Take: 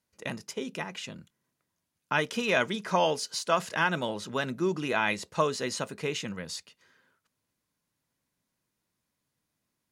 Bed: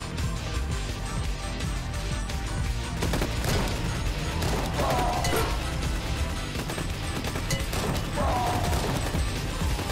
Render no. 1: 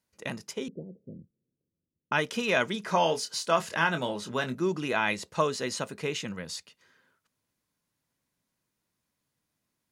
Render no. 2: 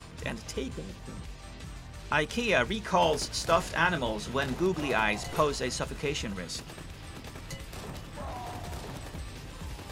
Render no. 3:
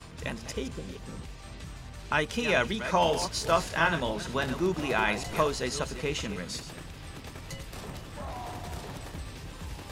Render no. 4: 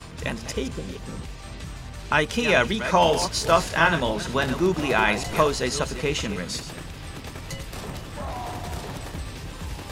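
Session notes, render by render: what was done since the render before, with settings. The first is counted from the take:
0.68–2.12 steep low-pass 520 Hz 48 dB/oct; 2.81–4.55 doubler 24 ms -9 dB
add bed -13 dB
reverse delay 0.194 s, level -10.5 dB
gain +6 dB

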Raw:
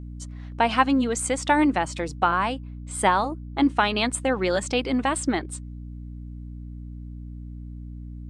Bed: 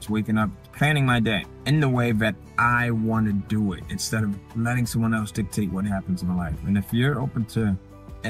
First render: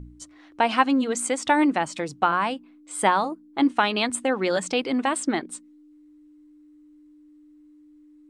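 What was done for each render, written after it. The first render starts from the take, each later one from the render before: de-hum 60 Hz, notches 4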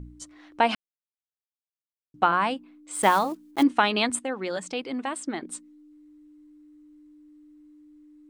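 0.75–2.14 mute; 2.93–3.64 block floating point 5-bit; 4.19–5.42 gain -7 dB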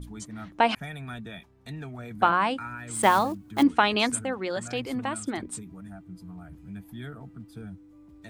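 add bed -18 dB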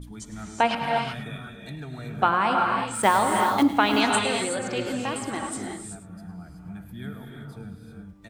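echo 0.105 s -14 dB; non-linear reverb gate 0.4 s rising, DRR 1.5 dB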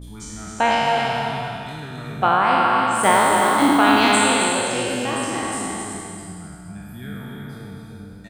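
spectral trails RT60 2.29 s; echo 0.267 s -6.5 dB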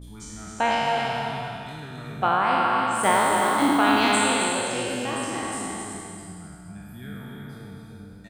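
gain -4.5 dB

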